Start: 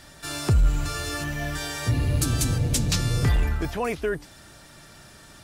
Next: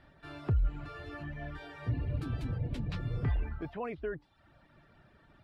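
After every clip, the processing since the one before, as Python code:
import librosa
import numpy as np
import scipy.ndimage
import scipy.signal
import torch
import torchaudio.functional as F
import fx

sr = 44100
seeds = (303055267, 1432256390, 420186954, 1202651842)

y = fx.dereverb_blind(x, sr, rt60_s=0.72)
y = fx.air_absorb(y, sr, metres=460.0)
y = y * librosa.db_to_amplitude(-8.5)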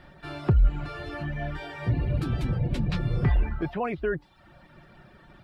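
y = x + 0.38 * np.pad(x, (int(5.5 * sr / 1000.0), 0))[:len(x)]
y = y * librosa.db_to_amplitude(9.0)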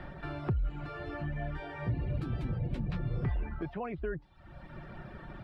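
y = fx.high_shelf(x, sr, hz=4100.0, db=-10.5)
y = fx.band_squash(y, sr, depth_pct=70)
y = y * librosa.db_to_amplitude(-7.5)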